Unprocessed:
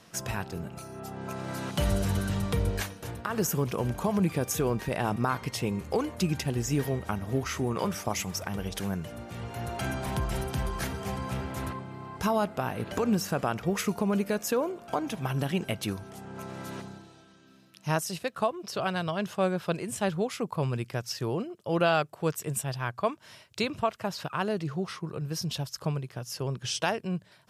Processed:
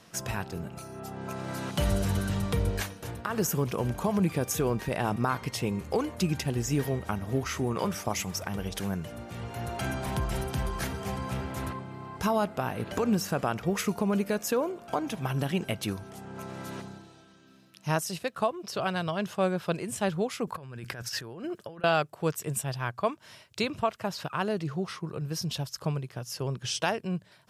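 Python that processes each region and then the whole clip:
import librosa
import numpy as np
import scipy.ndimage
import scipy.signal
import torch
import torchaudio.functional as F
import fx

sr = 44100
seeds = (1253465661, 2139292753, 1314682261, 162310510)

y = fx.chain(x, sr, fx.over_compress(threshold_db=-40.0, ratio=-1.0),
    fx.peak_eq(hz=1600.0, db=9.5, octaves=0.42), at=(20.47, 21.84))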